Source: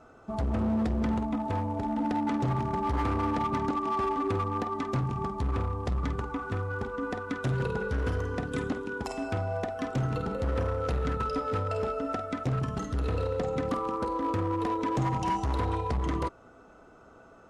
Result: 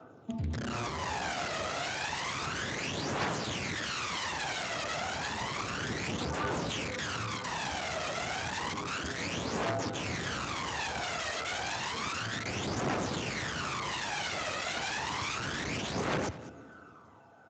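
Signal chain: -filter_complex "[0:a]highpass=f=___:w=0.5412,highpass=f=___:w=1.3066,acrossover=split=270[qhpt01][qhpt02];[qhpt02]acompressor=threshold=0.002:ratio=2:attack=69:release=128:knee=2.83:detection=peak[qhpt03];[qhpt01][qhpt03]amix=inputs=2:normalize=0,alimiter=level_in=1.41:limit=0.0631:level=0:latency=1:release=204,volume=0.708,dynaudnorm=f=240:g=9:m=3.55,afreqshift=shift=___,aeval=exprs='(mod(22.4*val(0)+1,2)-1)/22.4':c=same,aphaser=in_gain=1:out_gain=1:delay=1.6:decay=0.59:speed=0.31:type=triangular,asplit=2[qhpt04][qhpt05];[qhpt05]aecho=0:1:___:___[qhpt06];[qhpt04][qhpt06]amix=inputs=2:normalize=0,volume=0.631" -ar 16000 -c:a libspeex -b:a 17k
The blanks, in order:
69, 69, 15, 204, 0.141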